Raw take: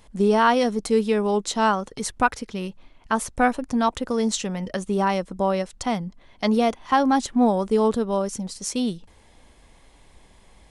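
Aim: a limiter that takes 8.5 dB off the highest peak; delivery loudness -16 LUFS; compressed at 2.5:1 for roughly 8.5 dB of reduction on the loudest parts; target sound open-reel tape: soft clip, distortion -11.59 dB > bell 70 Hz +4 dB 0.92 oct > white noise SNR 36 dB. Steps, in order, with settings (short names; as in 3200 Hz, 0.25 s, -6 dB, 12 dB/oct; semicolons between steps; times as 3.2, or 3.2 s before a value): compressor 2.5:1, threshold -27 dBFS; limiter -22 dBFS; soft clip -30 dBFS; bell 70 Hz +4 dB 0.92 oct; white noise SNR 36 dB; gain +20 dB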